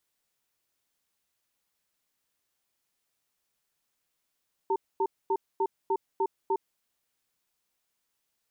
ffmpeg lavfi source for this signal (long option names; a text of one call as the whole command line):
ffmpeg -f lavfi -i "aevalsrc='0.0501*(sin(2*PI*389*t)+sin(2*PI*907*t))*clip(min(mod(t,0.3),0.06-mod(t,0.3))/0.005,0,1)':duration=2.08:sample_rate=44100" out.wav